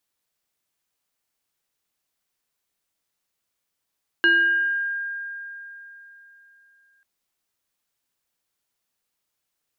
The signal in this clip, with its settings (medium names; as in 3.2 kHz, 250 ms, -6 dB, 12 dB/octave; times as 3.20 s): FM tone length 2.79 s, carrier 1.61 kHz, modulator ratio 0.79, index 0.66, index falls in 1.11 s exponential, decay 3.53 s, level -13 dB